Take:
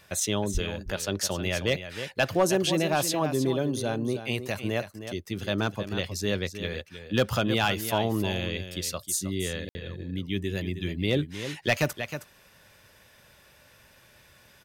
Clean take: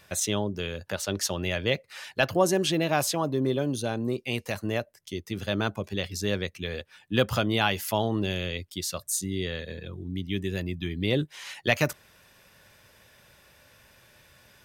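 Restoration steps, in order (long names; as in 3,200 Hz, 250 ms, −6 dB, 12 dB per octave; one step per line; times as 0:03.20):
clipped peaks rebuilt −14 dBFS
high-pass at the plosives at 0:00.53
ambience match 0:09.69–0:09.75
echo removal 315 ms −10.5 dB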